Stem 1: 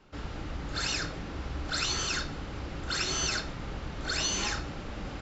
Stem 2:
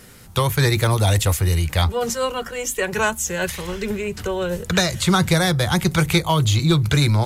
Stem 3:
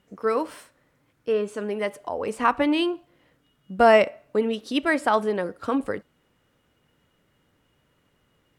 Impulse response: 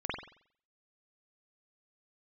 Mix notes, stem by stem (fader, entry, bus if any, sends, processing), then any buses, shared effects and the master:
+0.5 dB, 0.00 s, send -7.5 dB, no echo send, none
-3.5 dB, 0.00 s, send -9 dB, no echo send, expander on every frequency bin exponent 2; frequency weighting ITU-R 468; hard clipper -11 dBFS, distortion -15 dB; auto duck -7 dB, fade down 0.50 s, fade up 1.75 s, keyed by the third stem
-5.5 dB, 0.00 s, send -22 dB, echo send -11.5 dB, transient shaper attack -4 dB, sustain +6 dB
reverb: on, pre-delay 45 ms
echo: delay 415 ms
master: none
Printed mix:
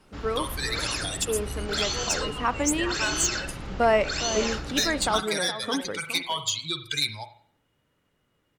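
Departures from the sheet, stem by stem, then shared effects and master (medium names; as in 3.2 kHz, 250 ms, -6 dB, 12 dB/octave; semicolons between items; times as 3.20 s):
stem 1: send -7.5 dB -> -14.5 dB; stem 3: missing transient shaper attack -4 dB, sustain +6 dB; reverb return -7.0 dB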